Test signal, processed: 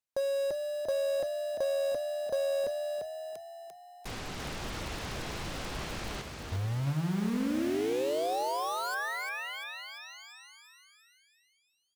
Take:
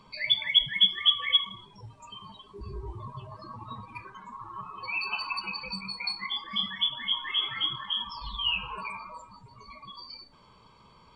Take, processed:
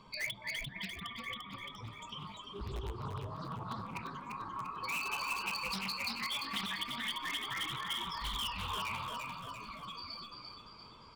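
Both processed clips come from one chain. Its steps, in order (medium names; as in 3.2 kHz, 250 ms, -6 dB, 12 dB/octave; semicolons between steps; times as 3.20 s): low-pass that closes with the level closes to 690 Hz, closed at -22.5 dBFS; in parallel at -4.5 dB: integer overflow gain 30 dB; on the sum: frequency-shifting echo 345 ms, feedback 51%, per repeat +40 Hz, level -4.5 dB; loudspeaker Doppler distortion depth 0.41 ms; trim -5.5 dB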